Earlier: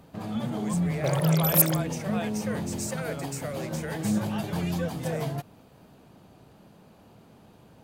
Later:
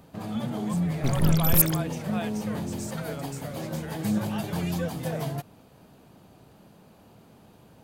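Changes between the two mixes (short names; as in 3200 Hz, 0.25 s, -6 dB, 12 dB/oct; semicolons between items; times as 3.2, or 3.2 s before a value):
speech -6.0 dB; first sound: add high shelf 8600 Hz +5 dB; second sound: remove resonant high-pass 570 Hz, resonance Q 5.8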